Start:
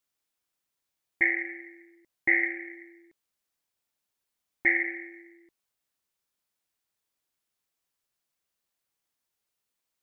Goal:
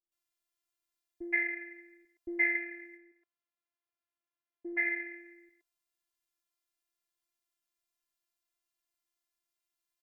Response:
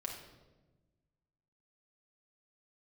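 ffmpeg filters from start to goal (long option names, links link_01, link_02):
-filter_complex "[0:a]asettb=1/sr,asplit=3[link_01][link_02][link_03];[link_01]atrim=end=2.854[link_04];[link_02]atrim=start=2.85:end=4.73,asetpts=PTS-STARTPTS,afade=type=in:duration=0.004:curve=qsin,afade=type=out:start_time=1.876:duration=0.004:curve=qsin,highpass=240,lowpass=2300[link_05];[link_03]atrim=start=4.726[link_06];[link_04][link_05]acrossfade=duration=0.004:curve1=hsin:curve2=qsin[link_07];[link_07][link_06]acrossfade=duration=0.004:curve1=qsin:curve2=hsin,acrossover=split=470[link_08][link_09];[link_09]adelay=120[link_10];[link_08][link_10]amix=inputs=2:normalize=0,afftfilt=real='hypot(re,im)*cos(PI*b)':imag='0':win_size=512:overlap=0.75,volume=-1.5dB"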